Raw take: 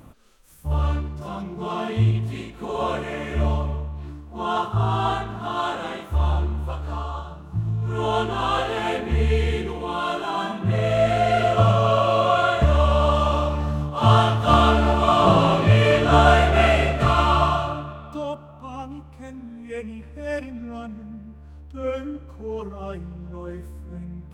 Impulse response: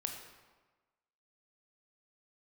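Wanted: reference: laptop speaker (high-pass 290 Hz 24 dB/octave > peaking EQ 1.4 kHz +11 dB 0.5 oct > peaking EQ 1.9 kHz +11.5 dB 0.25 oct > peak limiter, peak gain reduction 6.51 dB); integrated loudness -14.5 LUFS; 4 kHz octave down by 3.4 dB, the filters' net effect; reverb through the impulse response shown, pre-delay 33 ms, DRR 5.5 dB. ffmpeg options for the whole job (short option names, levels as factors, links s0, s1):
-filter_complex "[0:a]equalizer=f=4000:t=o:g=-6.5,asplit=2[s0][s1];[1:a]atrim=start_sample=2205,adelay=33[s2];[s1][s2]afir=irnorm=-1:irlink=0,volume=0.531[s3];[s0][s3]amix=inputs=2:normalize=0,highpass=f=290:w=0.5412,highpass=f=290:w=1.3066,equalizer=f=1400:t=o:w=0.5:g=11,equalizer=f=1900:t=o:w=0.25:g=11.5,volume=1.58,alimiter=limit=0.841:level=0:latency=1"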